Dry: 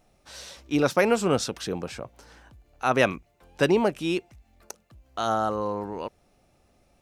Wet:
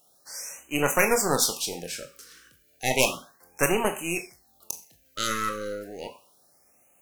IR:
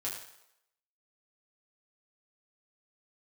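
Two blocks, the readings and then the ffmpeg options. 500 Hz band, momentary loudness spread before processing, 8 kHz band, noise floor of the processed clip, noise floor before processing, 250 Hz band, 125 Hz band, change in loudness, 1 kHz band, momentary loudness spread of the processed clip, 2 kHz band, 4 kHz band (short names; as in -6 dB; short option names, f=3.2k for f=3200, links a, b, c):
-3.0 dB, 20 LU, +11.0 dB, -63 dBFS, -65 dBFS, -5.5 dB, -3.5 dB, -1.0 dB, -2.0 dB, 18 LU, +2.0 dB, +4.0 dB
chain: -filter_complex "[0:a]highpass=f=410:p=1,aeval=exprs='0.531*(cos(1*acos(clip(val(0)/0.531,-1,1)))-cos(1*PI/2))+0.0841*(cos(6*acos(clip(val(0)/0.531,-1,1)))-cos(6*PI/2))':c=same,aemphasis=mode=production:type=75fm,asplit=2[a][b];[1:a]atrim=start_sample=2205,asetrate=74970,aresample=44100,adelay=23[c];[b][c]afir=irnorm=-1:irlink=0,volume=-3dB[d];[a][d]amix=inputs=2:normalize=0,afftfilt=real='re*(1-between(b*sr/1024,760*pow(4400/760,0.5+0.5*sin(2*PI*0.32*pts/sr))/1.41,760*pow(4400/760,0.5+0.5*sin(2*PI*0.32*pts/sr))*1.41))':imag='im*(1-between(b*sr/1024,760*pow(4400/760,0.5+0.5*sin(2*PI*0.32*pts/sr))/1.41,760*pow(4400/760,0.5+0.5*sin(2*PI*0.32*pts/sr))*1.41))':win_size=1024:overlap=0.75,volume=-1.5dB"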